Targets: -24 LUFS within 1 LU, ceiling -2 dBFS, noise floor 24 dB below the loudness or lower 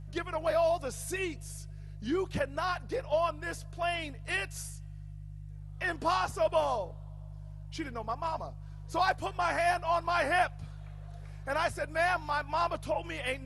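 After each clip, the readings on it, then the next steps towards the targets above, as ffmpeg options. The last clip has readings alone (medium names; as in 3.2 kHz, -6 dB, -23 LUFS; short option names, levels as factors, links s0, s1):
hum 50 Hz; highest harmonic 150 Hz; hum level -42 dBFS; loudness -32.0 LUFS; peak level -16.5 dBFS; loudness target -24.0 LUFS
-> -af "bandreject=f=50:t=h:w=4,bandreject=f=100:t=h:w=4,bandreject=f=150:t=h:w=4"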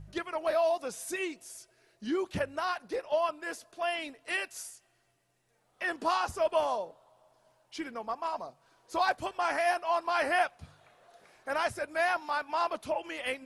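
hum not found; loudness -32.0 LUFS; peak level -16.5 dBFS; loudness target -24.0 LUFS
-> -af "volume=2.51"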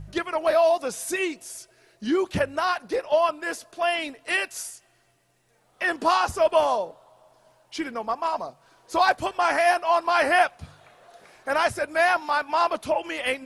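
loudness -24.0 LUFS; peak level -8.5 dBFS; noise floor -64 dBFS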